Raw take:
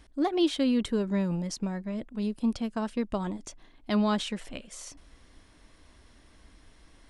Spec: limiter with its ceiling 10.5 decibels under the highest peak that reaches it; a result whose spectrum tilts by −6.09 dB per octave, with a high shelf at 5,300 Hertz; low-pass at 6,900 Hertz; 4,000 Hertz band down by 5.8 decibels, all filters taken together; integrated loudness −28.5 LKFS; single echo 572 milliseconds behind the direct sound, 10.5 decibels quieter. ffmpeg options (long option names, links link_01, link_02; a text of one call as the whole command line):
ffmpeg -i in.wav -af "lowpass=6900,equalizer=frequency=4000:width_type=o:gain=-5.5,highshelf=frequency=5300:gain=-5,alimiter=level_in=2dB:limit=-24dB:level=0:latency=1,volume=-2dB,aecho=1:1:572:0.299,volume=6.5dB" out.wav